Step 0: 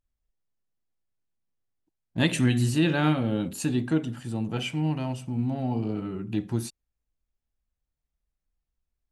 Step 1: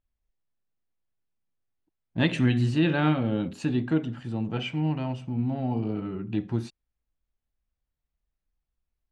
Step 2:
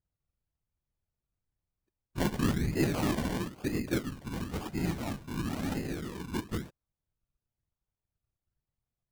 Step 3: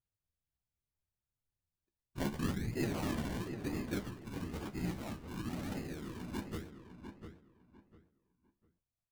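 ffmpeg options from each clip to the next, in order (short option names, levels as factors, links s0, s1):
-af "lowpass=3600"
-af "afftfilt=real='hypot(re,im)*cos(2*PI*random(0))':imag='hypot(re,im)*sin(2*PI*random(1))':win_size=512:overlap=0.75,acrusher=samples=27:mix=1:aa=0.000001:lfo=1:lforange=16.2:lforate=0.99"
-filter_complex "[0:a]flanger=delay=7.7:depth=9.3:regen=52:speed=0.72:shape=triangular,asplit=2[s0][s1];[s1]adelay=700,lowpass=f=2500:p=1,volume=0.398,asplit=2[s2][s3];[s3]adelay=700,lowpass=f=2500:p=1,volume=0.25,asplit=2[s4][s5];[s5]adelay=700,lowpass=f=2500:p=1,volume=0.25[s6];[s0][s2][s4][s6]amix=inputs=4:normalize=0,volume=0.708"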